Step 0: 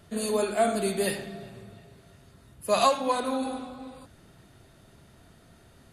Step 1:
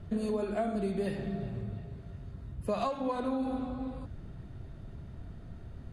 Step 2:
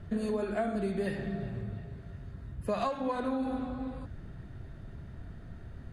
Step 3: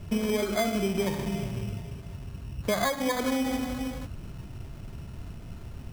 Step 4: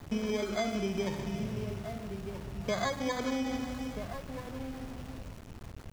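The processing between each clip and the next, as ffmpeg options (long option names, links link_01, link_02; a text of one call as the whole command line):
ffmpeg -i in.wav -af "aemphasis=mode=reproduction:type=riaa,acompressor=threshold=-28dB:ratio=6,volume=-1dB" out.wav
ffmpeg -i in.wav -af "equalizer=frequency=1700:width_type=o:width=0.54:gain=6.5" out.wav
ffmpeg -i in.wav -af "acrusher=samples=16:mix=1:aa=0.000001,volume=4.5dB" out.wav
ffmpeg -i in.wav -filter_complex "[0:a]aresample=16000,aresample=44100,asplit=2[link_01][link_02];[link_02]adelay=1283,volume=-8dB,highshelf=frequency=4000:gain=-28.9[link_03];[link_01][link_03]amix=inputs=2:normalize=0,aeval=exprs='val(0)*gte(abs(val(0)),0.0112)':channel_layout=same,volume=-5dB" out.wav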